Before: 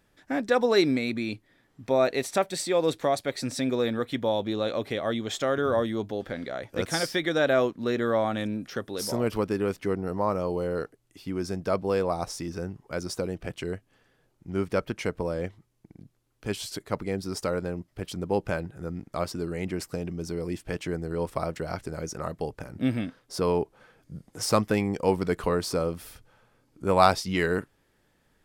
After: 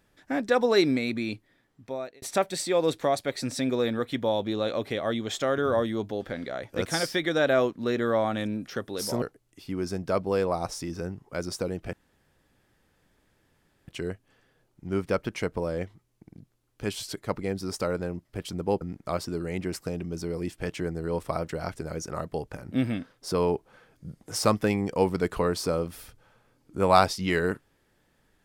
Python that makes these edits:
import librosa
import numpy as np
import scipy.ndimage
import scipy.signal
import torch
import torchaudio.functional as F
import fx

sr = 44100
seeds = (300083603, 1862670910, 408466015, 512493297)

y = fx.edit(x, sr, fx.fade_out_span(start_s=1.31, length_s=0.91),
    fx.cut(start_s=9.22, length_s=1.58),
    fx.insert_room_tone(at_s=13.51, length_s=1.95),
    fx.cut(start_s=18.44, length_s=0.44), tone=tone)